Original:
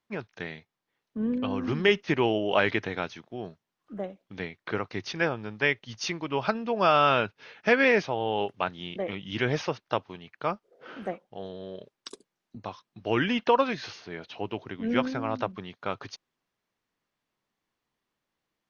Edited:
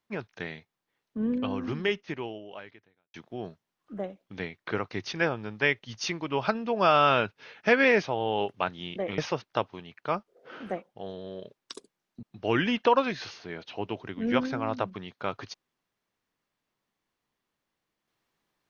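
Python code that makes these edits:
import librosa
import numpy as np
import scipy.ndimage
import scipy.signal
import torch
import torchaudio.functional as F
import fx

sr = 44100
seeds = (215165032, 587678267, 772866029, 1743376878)

y = fx.edit(x, sr, fx.fade_out_span(start_s=1.39, length_s=1.75, curve='qua'),
    fx.cut(start_s=9.18, length_s=0.36),
    fx.cut(start_s=12.59, length_s=0.26), tone=tone)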